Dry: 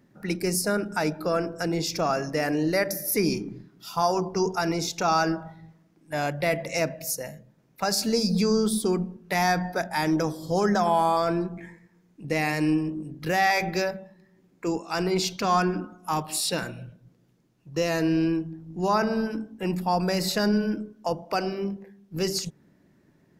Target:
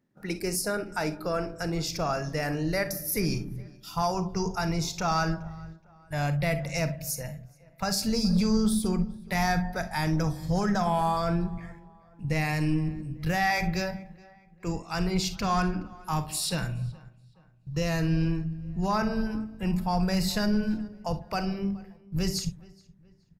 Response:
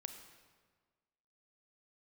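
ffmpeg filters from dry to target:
-filter_complex "[0:a]agate=range=-11dB:threshold=-50dB:ratio=16:detection=peak,asubboost=boost=11:cutoff=100,asplit=2[a][b];[b]volume=17dB,asoftclip=hard,volume=-17dB,volume=-3dB[c];[a][c]amix=inputs=2:normalize=0,asplit=2[d][e];[e]adelay=422,lowpass=f=2.9k:p=1,volume=-23dB,asplit=2[f][g];[g]adelay=422,lowpass=f=2.9k:p=1,volume=0.44,asplit=2[h][i];[i]adelay=422,lowpass=f=2.9k:p=1,volume=0.44[j];[d][f][h][j]amix=inputs=4:normalize=0[k];[1:a]atrim=start_sample=2205,atrim=end_sample=3087[l];[k][l]afir=irnorm=-1:irlink=0,volume=-3.5dB"

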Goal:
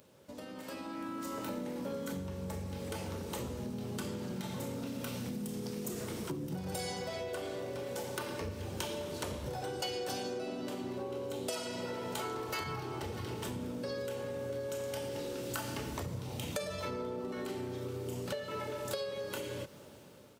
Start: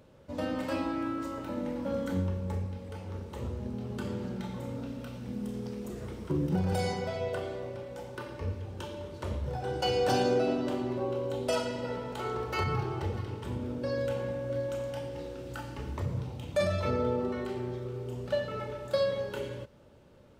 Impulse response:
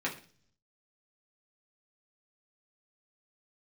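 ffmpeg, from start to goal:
-filter_complex "[0:a]highpass=130,acompressor=threshold=-41dB:ratio=16,asplit=2[a][b];[b]asetrate=33038,aresample=44100,atempo=1.33484,volume=-8dB[c];[a][c]amix=inputs=2:normalize=0,dynaudnorm=f=350:g=5:m=10dB,asplit=2[d][e];[e]asoftclip=type=tanh:threshold=-30dB,volume=-4.5dB[f];[d][f]amix=inputs=2:normalize=0,crystalizer=i=3:c=0,volume=-8.5dB"

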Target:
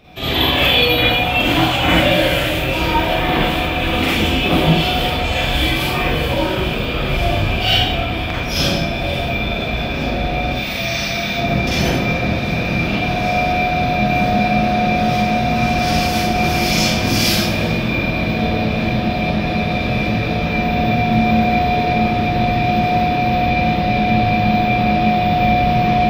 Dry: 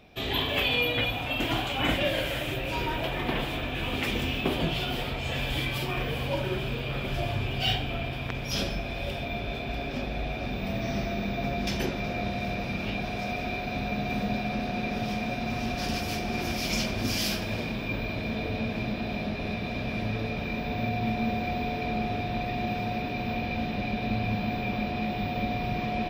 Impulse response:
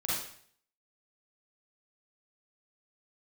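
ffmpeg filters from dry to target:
-filter_complex "[0:a]asettb=1/sr,asplit=3[a][b][c];[a]atrim=end=10.514[d];[b]atrim=start=10.51:end=11.35,asetpts=PTS-STARTPTS,afade=t=in:d=0.004:c=qsin,afade=t=out:st=0.836:d=0.004:c=qsin,tiltshelf=f=1.4k:g=-8.5[e];[c]atrim=start=11.346[f];[d][e]acrossfade=d=0.004:c1=hsin:c2=qsin[g];[g][f]acrossfade=d=0.004:c1=qsin:c2=hsin[h];[1:a]atrim=start_sample=2205[i];[h][i]afir=irnorm=-1:irlink=0,volume=7dB"

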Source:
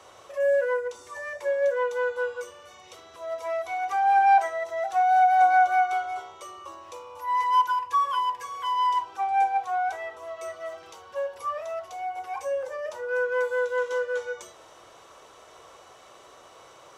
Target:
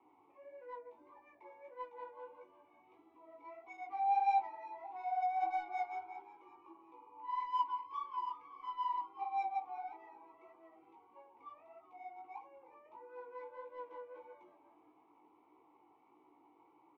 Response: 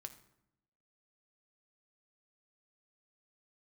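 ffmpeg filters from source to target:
-filter_complex "[0:a]asplit=3[a][b][c];[a]bandpass=f=300:t=q:w=8,volume=0dB[d];[b]bandpass=f=870:t=q:w=8,volume=-6dB[e];[c]bandpass=f=2.24k:t=q:w=8,volume=-9dB[f];[d][e][f]amix=inputs=3:normalize=0,acrossover=split=810[g][h];[h]adynamicsmooth=sensitivity=6.5:basefreq=1.6k[i];[g][i]amix=inputs=2:normalize=0,flanger=delay=15.5:depth=5.1:speed=1.6,asplit=4[j][k][l][m];[k]adelay=363,afreqshift=88,volume=-18.5dB[n];[l]adelay=726,afreqshift=176,volume=-28.1dB[o];[m]adelay=1089,afreqshift=264,volume=-37.8dB[p];[j][n][o][p]amix=inputs=4:normalize=0,volume=3.5dB"

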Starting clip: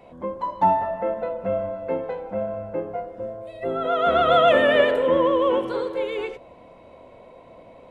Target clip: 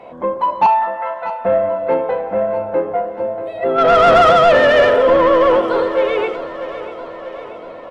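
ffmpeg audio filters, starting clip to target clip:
-filter_complex "[0:a]asettb=1/sr,asplit=3[a][b][c];[a]atrim=end=0.664[d];[b]atrim=start=0.66:end=1.45,asetpts=PTS-STARTPTS,afade=t=in:d=0.004:c=qsin,afade=t=out:st=0.786:d=0.004:c=qsin,highpass=f=850:w=0.5412,highpass=f=850:w=1.3066[e];[c]atrim=start=1.446[f];[d][e]acrossfade=d=0.004:c1=hsin:c2=qsin[g];[g][f]acrossfade=d=0.004:c1=qsin:c2=hsin,asettb=1/sr,asplit=3[h][i][j];[h]atrim=end=3.784[k];[i]atrim=start=3.78:end=4.31,asetpts=PTS-STARTPTS,afade=t=in:d=0.004:c=qsin,afade=t=out:st=0.526:d=0.004:c=qsin,acontrast=67[l];[j]atrim=start=4.306[m];[k][l]acrossfade=d=0.004:c1=hsin:c2=qsin[n];[n][m]acrossfade=d=0.004:c1=qsin:c2=hsin,asplit=2[o][p];[p]highpass=f=720:p=1,volume=19dB,asoftclip=type=tanh:threshold=-4dB[q];[o][q]amix=inputs=2:normalize=0,lowpass=f=1.4k:p=1,volume=-6dB,asplit=2[r][s];[s]aecho=0:1:639|1278|1917|2556|3195|3834:0.2|0.118|0.0695|0.041|0.0242|0.0143[t];[r][t]amix=inputs=2:normalize=0,volume=2dB"

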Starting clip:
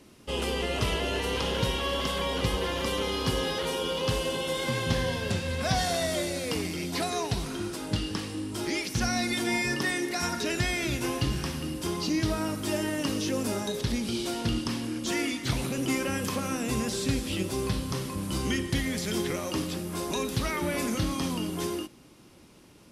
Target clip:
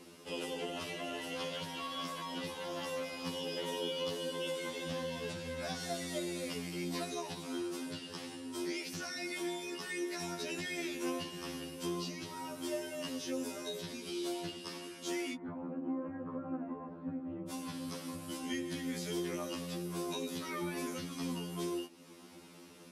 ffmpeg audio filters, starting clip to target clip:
-filter_complex "[0:a]asplit=3[a][b][c];[a]afade=t=out:st=15.33:d=0.02[d];[b]lowpass=f=1.2k:w=0.5412,lowpass=f=1.2k:w=1.3066,afade=t=in:st=15.33:d=0.02,afade=t=out:st=17.48:d=0.02[e];[c]afade=t=in:st=17.48:d=0.02[f];[d][e][f]amix=inputs=3:normalize=0,acompressor=threshold=-46dB:ratio=2,highpass=180,afftfilt=real='re*2*eq(mod(b,4),0)':imag='im*2*eq(mod(b,4),0)':win_size=2048:overlap=0.75,volume=3dB"

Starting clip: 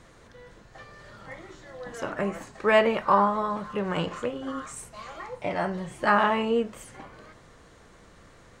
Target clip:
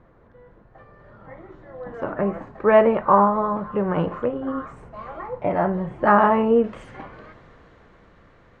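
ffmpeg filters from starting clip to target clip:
-af "asetnsamples=n=441:p=0,asendcmd='6.64 lowpass f 2600',lowpass=1.2k,dynaudnorm=f=250:g=13:m=8.5dB"

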